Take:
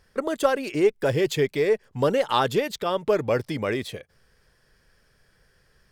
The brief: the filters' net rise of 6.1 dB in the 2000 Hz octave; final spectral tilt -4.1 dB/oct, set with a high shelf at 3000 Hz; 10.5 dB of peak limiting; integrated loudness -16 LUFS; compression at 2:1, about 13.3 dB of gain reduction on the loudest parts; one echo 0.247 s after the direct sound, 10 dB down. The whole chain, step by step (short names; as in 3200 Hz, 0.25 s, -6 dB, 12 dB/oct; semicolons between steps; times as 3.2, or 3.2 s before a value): bell 2000 Hz +4.5 dB; high shelf 3000 Hz +8.5 dB; compressor 2:1, threshold -39 dBFS; limiter -27.5 dBFS; echo 0.247 s -10 dB; gain +21.5 dB